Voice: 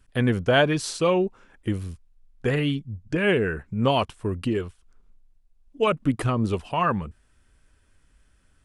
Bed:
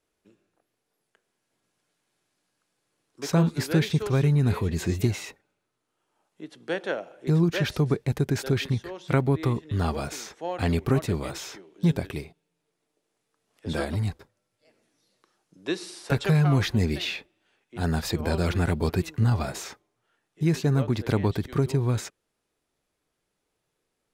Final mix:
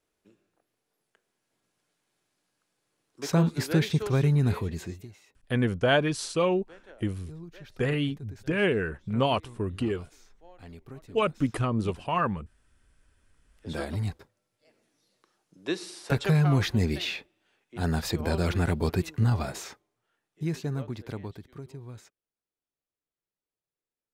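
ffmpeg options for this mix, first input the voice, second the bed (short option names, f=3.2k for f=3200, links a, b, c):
-filter_complex "[0:a]adelay=5350,volume=-3.5dB[a];[1:a]volume=19dB,afade=t=out:st=4.45:d=0.6:silence=0.0944061,afade=t=in:st=12.91:d=1.35:silence=0.0944061,afade=t=out:st=19.21:d=2.29:silence=0.141254[b];[a][b]amix=inputs=2:normalize=0"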